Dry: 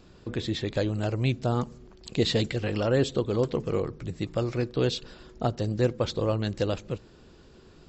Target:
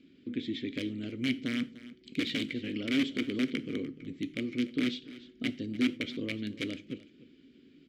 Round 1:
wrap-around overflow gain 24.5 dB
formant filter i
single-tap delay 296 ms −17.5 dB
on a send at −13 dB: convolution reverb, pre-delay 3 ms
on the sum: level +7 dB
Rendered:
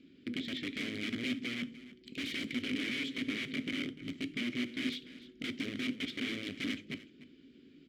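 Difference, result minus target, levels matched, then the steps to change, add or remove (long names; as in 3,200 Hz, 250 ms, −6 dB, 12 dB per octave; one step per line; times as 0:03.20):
wrap-around overflow: distortion +18 dB
change: wrap-around overflow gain 17.5 dB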